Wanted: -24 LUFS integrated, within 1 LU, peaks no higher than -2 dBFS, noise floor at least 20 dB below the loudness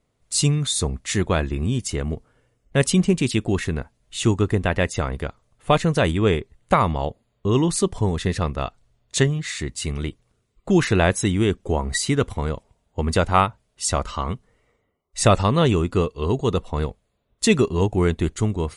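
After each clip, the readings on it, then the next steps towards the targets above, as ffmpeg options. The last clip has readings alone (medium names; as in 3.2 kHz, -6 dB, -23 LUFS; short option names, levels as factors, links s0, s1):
loudness -22.0 LUFS; peak level -2.5 dBFS; loudness target -24.0 LUFS
-> -af "volume=0.794"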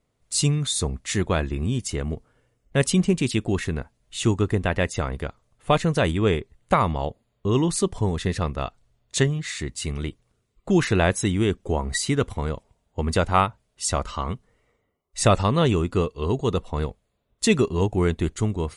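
loudness -24.0 LUFS; peak level -4.5 dBFS; noise floor -73 dBFS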